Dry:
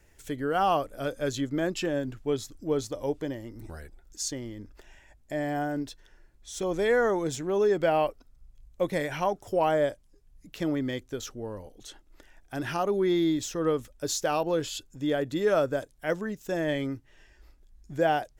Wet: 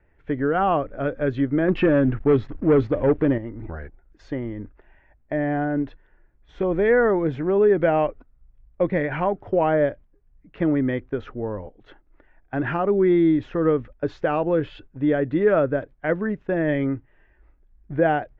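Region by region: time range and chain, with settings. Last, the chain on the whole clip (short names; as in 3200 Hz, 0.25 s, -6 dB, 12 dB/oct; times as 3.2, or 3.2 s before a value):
1.68–3.38 high shelf 8700 Hz -9.5 dB + sample leveller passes 2
whole clip: gate -45 dBFS, range -9 dB; LPF 2100 Hz 24 dB/oct; dynamic EQ 890 Hz, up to -6 dB, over -36 dBFS, Q 0.85; gain +8.5 dB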